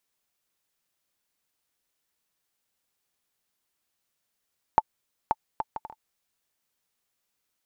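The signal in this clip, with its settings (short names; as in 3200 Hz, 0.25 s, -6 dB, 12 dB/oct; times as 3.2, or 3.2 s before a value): bouncing ball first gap 0.53 s, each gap 0.55, 877 Hz, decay 38 ms -5.5 dBFS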